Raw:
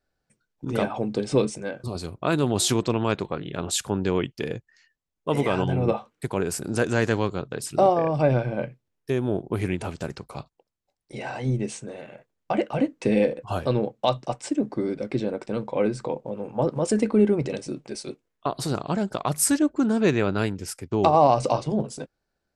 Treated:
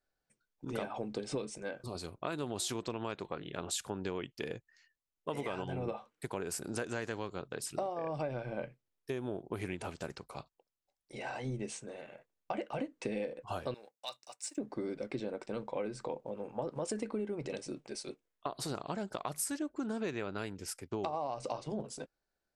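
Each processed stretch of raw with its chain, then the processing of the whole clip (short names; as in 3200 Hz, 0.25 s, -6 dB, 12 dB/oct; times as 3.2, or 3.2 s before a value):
13.74–14.58 differentiator + notch 3200 Hz, Q 6.3 + sample leveller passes 1
whole clip: bell 110 Hz -6.5 dB 2.9 oct; compressor 12:1, threshold -26 dBFS; gain -6.5 dB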